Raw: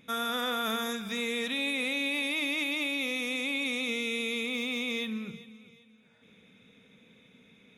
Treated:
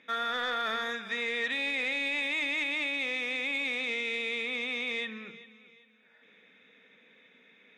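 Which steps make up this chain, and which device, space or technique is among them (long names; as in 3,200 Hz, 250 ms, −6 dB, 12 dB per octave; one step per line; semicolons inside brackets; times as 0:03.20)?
intercom (band-pass filter 370–4,100 Hz; parametric band 1,800 Hz +11 dB 0.35 octaves; soft clipping −21 dBFS, distortion −22 dB)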